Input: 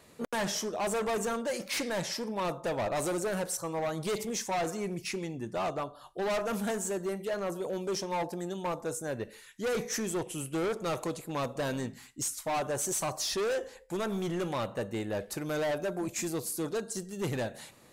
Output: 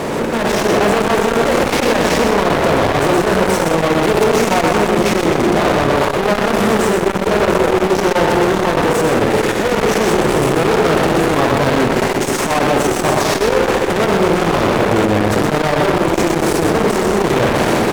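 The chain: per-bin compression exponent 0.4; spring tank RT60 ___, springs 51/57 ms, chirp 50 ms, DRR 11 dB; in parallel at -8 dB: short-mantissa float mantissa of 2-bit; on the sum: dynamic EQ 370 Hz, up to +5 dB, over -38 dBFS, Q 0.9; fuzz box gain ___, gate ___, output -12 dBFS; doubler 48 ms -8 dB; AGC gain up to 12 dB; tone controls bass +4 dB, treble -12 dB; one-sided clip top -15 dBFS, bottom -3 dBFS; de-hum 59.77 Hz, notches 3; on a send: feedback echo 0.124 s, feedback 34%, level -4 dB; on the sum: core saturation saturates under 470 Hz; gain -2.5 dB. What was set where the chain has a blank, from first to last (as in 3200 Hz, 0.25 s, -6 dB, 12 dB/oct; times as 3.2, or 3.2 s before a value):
2 s, 31 dB, -38 dBFS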